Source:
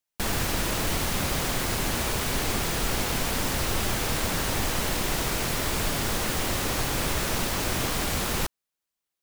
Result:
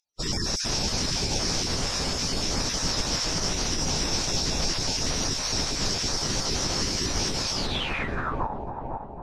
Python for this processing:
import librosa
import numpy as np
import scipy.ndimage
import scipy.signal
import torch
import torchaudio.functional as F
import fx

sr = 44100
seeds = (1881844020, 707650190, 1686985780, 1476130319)

y = fx.spec_dropout(x, sr, seeds[0], share_pct=30)
y = fx.peak_eq(y, sr, hz=2300.0, db=-4.5, octaves=2.4)
y = fx.echo_split(y, sr, split_hz=2600.0, low_ms=505, high_ms=241, feedback_pct=52, wet_db=-5.0)
y = fx.filter_sweep_lowpass(y, sr, from_hz=5500.0, to_hz=870.0, start_s=7.51, end_s=8.5, q=6.4)
y = fx.pitch_keep_formants(y, sr, semitones=-6.5)